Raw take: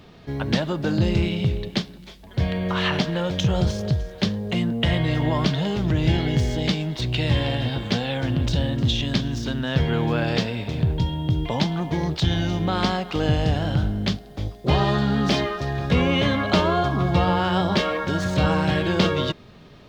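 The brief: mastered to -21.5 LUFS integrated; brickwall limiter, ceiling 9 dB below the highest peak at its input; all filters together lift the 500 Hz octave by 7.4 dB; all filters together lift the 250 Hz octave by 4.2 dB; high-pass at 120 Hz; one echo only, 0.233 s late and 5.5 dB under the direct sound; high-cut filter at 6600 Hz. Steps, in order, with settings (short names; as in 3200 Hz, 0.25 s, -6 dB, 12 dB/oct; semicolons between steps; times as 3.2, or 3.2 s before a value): HPF 120 Hz; LPF 6600 Hz; bell 250 Hz +4.5 dB; bell 500 Hz +8 dB; limiter -10 dBFS; echo 0.233 s -5.5 dB; gain -1.5 dB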